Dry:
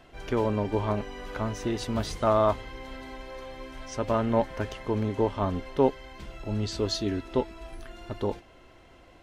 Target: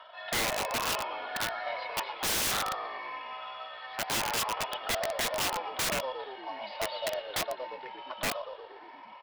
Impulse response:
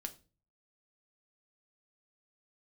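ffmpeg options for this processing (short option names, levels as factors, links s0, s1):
-filter_complex "[0:a]afftfilt=real='re*pow(10,9/40*sin(2*PI*(0.66*log(max(b,1)*sr/1024/100)/log(2)-(0.84)*(pts-256)/sr)))':imag='im*pow(10,9/40*sin(2*PI*(0.66*log(max(b,1)*sr/1024/100)/log(2)-(0.84)*(pts-256)/sr)))':win_size=1024:overlap=0.75,aecho=1:1:2.6:0.78,acrossover=split=1400[s0][s1];[s0]acompressor=mode=upward:threshold=0.0126:ratio=2.5[s2];[s1]aeval=exprs='(tanh(39.8*val(0)+0.25)-tanh(0.25))/39.8':c=same[s3];[s2][s3]amix=inputs=2:normalize=0,aeval=exprs='val(0)+0.01*(sin(2*PI*50*n/s)+sin(2*PI*2*50*n/s)/2+sin(2*PI*3*50*n/s)/3+sin(2*PI*4*50*n/s)/4+sin(2*PI*5*50*n/s)/5)':c=same,highpass=f=470:t=q:w=0.5412,highpass=f=470:t=q:w=1.307,lowpass=f=3600:t=q:w=0.5176,lowpass=f=3600:t=q:w=0.7071,lowpass=f=3600:t=q:w=1.932,afreqshift=240,aresample=11025,acrusher=bits=5:mode=log:mix=0:aa=0.000001,aresample=44100,asplit=8[s4][s5][s6][s7][s8][s9][s10][s11];[s5]adelay=117,afreqshift=-61,volume=0.335[s12];[s6]adelay=234,afreqshift=-122,volume=0.202[s13];[s7]adelay=351,afreqshift=-183,volume=0.12[s14];[s8]adelay=468,afreqshift=-244,volume=0.0724[s15];[s9]adelay=585,afreqshift=-305,volume=0.0437[s16];[s10]adelay=702,afreqshift=-366,volume=0.026[s17];[s11]adelay=819,afreqshift=-427,volume=0.0157[s18];[s4][s12][s13][s14][s15][s16][s17][s18]amix=inputs=8:normalize=0,aeval=exprs='(mod(16.8*val(0)+1,2)-1)/16.8':c=same"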